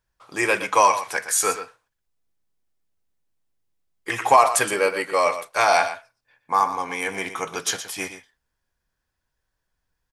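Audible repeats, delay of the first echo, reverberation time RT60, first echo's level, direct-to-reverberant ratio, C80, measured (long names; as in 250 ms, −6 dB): 1, 119 ms, no reverb audible, −11.5 dB, no reverb audible, no reverb audible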